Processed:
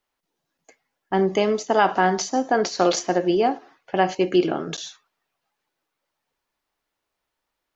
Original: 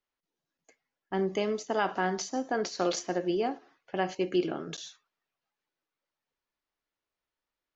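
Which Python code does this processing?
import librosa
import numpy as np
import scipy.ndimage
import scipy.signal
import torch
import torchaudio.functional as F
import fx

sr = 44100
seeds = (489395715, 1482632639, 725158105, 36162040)

y = fx.peak_eq(x, sr, hz=810.0, db=3.5, octaves=0.79)
y = y * librosa.db_to_amplitude(8.5)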